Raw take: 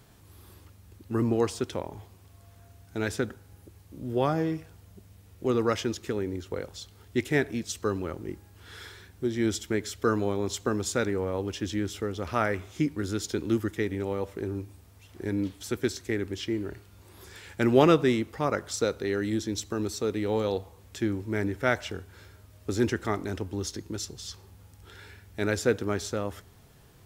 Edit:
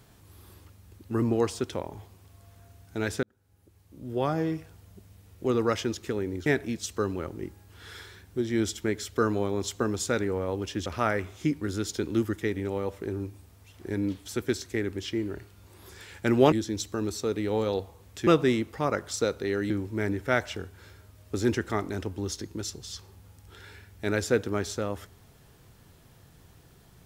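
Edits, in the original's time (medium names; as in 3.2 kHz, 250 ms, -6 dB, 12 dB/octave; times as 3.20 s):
3.23–4.49 s: fade in
6.46–7.32 s: delete
11.72–12.21 s: delete
17.87–19.30 s: move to 21.05 s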